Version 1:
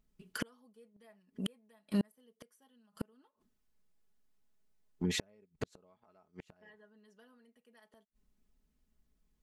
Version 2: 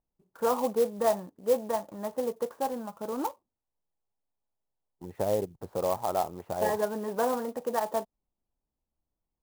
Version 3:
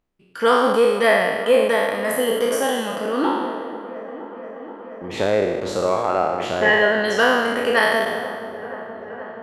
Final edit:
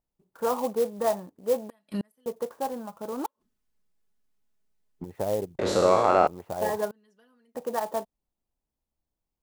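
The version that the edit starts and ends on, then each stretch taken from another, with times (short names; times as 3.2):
2
1.7–2.26 from 1
3.26–5.04 from 1
5.59–6.27 from 3
6.91–7.55 from 1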